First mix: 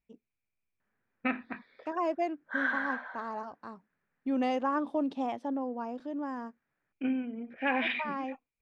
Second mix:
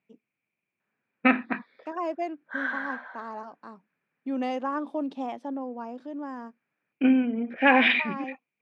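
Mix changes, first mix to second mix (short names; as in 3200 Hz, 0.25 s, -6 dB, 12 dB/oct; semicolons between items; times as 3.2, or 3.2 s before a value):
second voice +10.5 dB; master: add HPF 140 Hz 24 dB/oct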